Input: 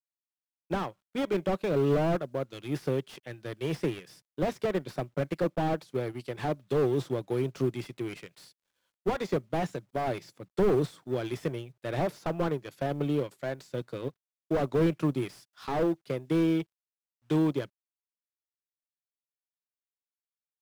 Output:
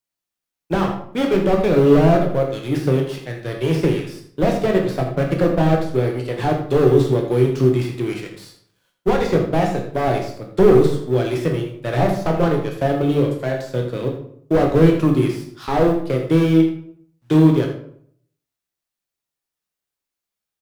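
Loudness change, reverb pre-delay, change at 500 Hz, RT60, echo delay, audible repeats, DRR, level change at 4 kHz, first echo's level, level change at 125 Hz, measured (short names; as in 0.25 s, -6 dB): +12.5 dB, 14 ms, +12.5 dB, 0.60 s, 81 ms, 1, 1.5 dB, +10.5 dB, -10.5 dB, +14.0 dB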